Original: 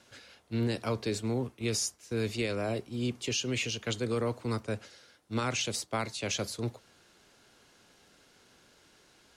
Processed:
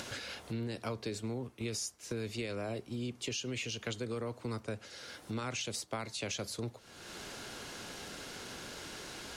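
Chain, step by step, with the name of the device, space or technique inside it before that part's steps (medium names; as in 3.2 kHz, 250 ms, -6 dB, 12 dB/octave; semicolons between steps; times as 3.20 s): upward and downward compression (upward compressor, threshold -34 dBFS; compression 4:1, threshold -38 dBFS, peak gain reduction 11 dB); trim +2 dB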